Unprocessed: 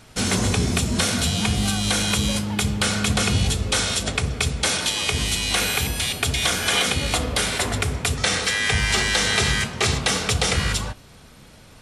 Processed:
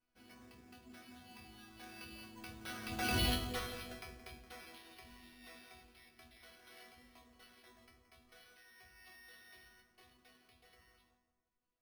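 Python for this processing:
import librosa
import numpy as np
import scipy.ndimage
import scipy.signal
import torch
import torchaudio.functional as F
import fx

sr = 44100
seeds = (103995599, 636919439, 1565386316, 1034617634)

p1 = fx.doppler_pass(x, sr, speed_mps=20, closest_m=2.2, pass_at_s=3.24)
p2 = fx.resonator_bank(p1, sr, root=59, chord='sus4', decay_s=0.37)
p3 = p2 + fx.echo_filtered(p2, sr, ms=172, feedback_pct=53, hz=1500.0, wet_db=-10, dry=0)
p4 = np.repeat(scipy.signal.resample_poly(p3, 1, 6), 6)[:len(p3)]
y = p4 * 10.0 ** (12.5 / 20.0)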